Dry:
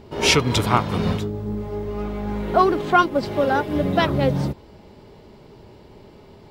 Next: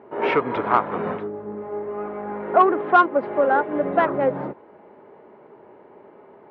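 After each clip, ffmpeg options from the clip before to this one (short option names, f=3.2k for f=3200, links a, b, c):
-af "lowpass=f=1.8k:w=0.5412,lowpass=f=1.8k:w=1.3066,acontrast=21,highpass=380,volume=-2dB"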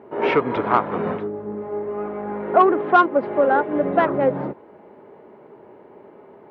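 -af "equalizer=f=1.3k:w=0.44:g=-4,volume=4dB"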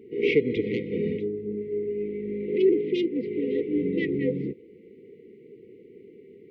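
-af "afftfilt=real='re*(1-between(b*sr/4096,510,1900))':imag='im*(1-between(b*sr/4096,510,1900))':win_size=4096:overlap=0.75,volume=-1.5dB"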